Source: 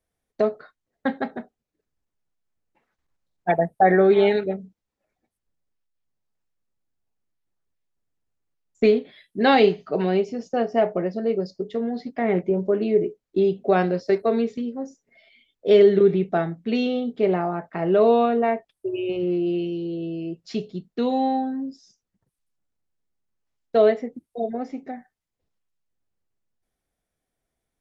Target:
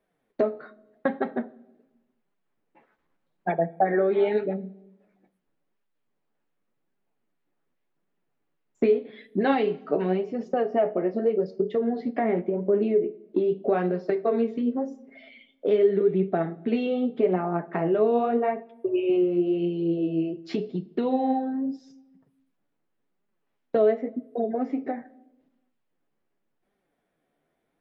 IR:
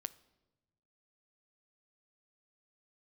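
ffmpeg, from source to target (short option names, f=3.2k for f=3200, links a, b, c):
-filter_complex "[0:a]acompressor=threshold=-35dB:ratio=3,flanger=delay=4.9:depth=9:regen=35:speed=0.86:shape=sinusoidal,asplit=2[a][b];[b]highpass=230,lowpass=3.1k[c];[1:a]atrim=start_sample=2205,lowshelf=f=340:g=8.5[d];[c][d]afir=irnorm=-1:irlink=0,volume=12dB[e];[a][e]amix=inputs=2:normalize=0"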